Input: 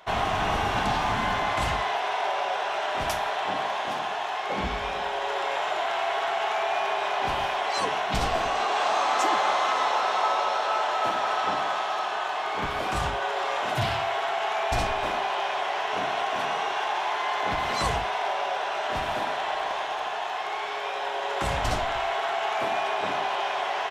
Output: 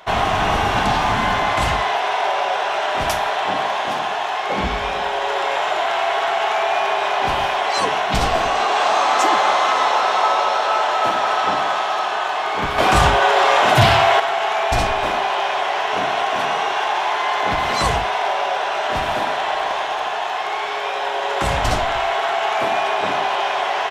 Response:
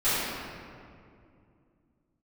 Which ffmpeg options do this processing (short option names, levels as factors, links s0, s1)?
-filter_complex "[0:a]asettb=1/sr,asplit=3[s0][s1][s2];[s0]atrim=end=12.784[s3];[s1]atrim=start=12.78:end=14.2,asetpts=PTS-STARTPTS,afade=t=in:d=0.004:c=qsin,afade=t=out:st=1.416:d=0.004:c=qsin,acontrast=57[s4];[s2]atrim=start=14.196[s5];[s3][s4]acrossfade=d=0.004:c1=hsin:c2=qsin[s6];[s6][s5]acrossfade=d=0.004:c1=qsin:c2=hsin,volume=2.37"